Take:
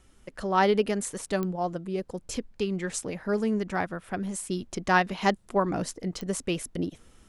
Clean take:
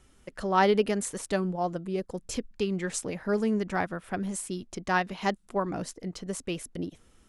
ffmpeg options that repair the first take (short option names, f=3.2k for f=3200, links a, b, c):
-af "adeclick=t=4,agate=range=-21dB:threshold=-48dB,asetnsamples=n=441:p=0,asendcmd='4.5 volume volume -4dB',volume=0dB"